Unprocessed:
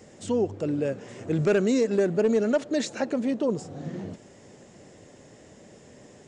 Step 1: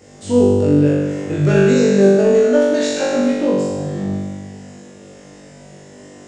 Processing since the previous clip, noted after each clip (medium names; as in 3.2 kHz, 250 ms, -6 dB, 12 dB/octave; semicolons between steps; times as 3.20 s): flutter echo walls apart 3.5 m, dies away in 1.5 s; trim +2.5 dB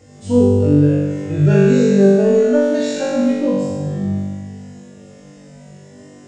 harmonic-percussive separation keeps harmonic; bass shelf 230 Hz +8 dB; trim -2.5 dB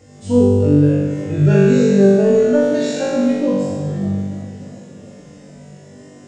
modulated delay 294 ms, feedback 74%, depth 189 cents, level -22 dB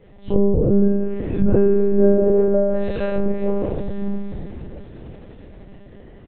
frequency-shifting echo 497 ms, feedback 58%, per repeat -75 Hz, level -16 dB; low-pass that closes with the level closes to 940 Hz, closed at -10 dBFS; monotone LPC vocoder at 8 kHz 200 Hz; trim -2.5 dB